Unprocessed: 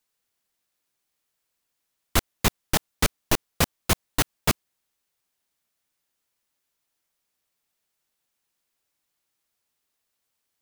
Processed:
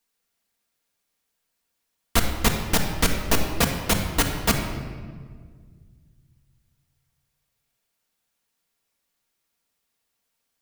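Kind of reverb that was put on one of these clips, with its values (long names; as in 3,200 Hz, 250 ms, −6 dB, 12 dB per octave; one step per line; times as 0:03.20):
rectangular room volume 2,300 cubic metres, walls mixed, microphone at 1.7 metres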